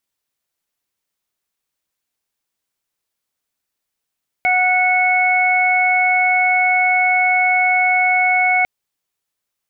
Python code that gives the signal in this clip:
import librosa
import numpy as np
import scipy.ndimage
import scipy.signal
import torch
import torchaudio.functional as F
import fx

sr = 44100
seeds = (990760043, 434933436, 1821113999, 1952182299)

y = fx.additive_steady(sr, length_s=4.2, hz=735.0, level_db=-16.5, upper_db=(-9.0, 2.5))